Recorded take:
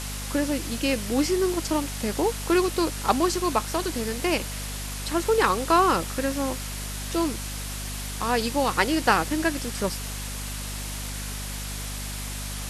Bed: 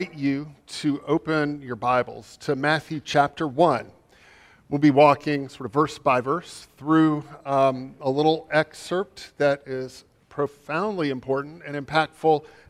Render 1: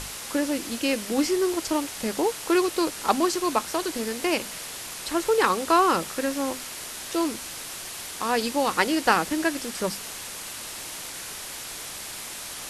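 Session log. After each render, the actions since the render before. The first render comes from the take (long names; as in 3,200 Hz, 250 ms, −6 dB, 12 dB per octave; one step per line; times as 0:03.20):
mains-hum notches 50/100/150/200/250 Hz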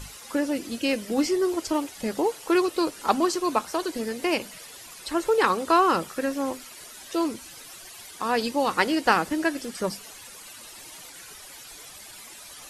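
broadband denoise 12 dB, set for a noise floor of −37 dBFS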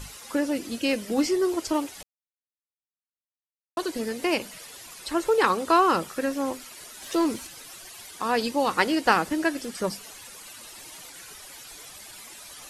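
0:02.03–0:03.77: silence
0:07.02–0:07.47: leveller curve on the samples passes 1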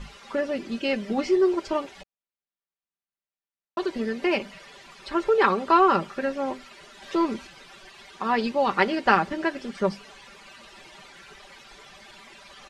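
low-pass filter 3,300 Hz 12 dB per octave
comb filter 5.1 ms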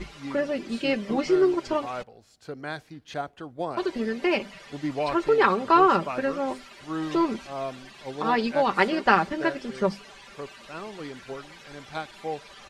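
mix in bed −13 dB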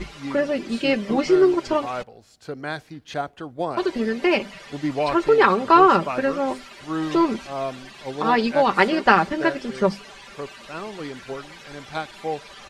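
level +4.5 dB
brickwall limiter −2 dBFS, peak gain reduction 2 dB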